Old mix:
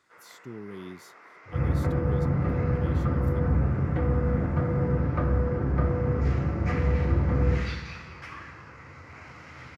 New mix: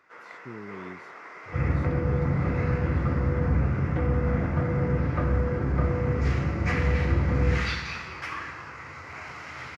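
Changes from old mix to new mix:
speech: add tape spacing loss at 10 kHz 21 dB; first sound +7.5 dB

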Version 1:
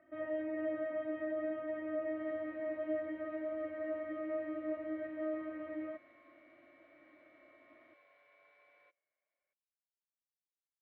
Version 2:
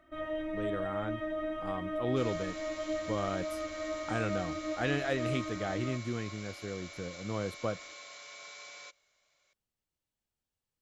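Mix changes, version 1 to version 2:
speech: unmuted; second sound +11.5 dB; master: remove cabinet simulation 170–2000 Hz, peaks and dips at 200 Hz -9 dB, 410 Hz -4 dB, 910 Hz -5 dB, 1.3 kHz -10 dB

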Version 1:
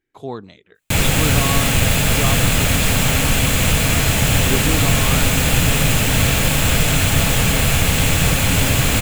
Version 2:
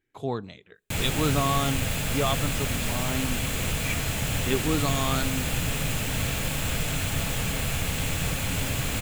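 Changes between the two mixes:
speech: send on; background -12.0 dB

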